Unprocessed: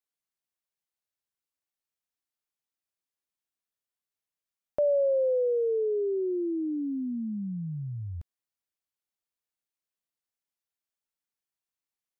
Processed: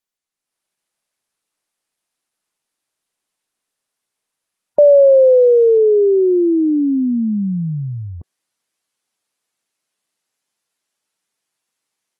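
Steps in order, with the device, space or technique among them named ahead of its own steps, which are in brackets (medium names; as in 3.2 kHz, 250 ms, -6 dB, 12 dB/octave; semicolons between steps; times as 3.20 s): noise-suppressed video call (high-pass 150 Hz 12 dB/octave; spectral gate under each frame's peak -30 dB strong; level rider gain up to 11.5 dB; trim +4.5 dB; Opus 20 kbps 48 kHz)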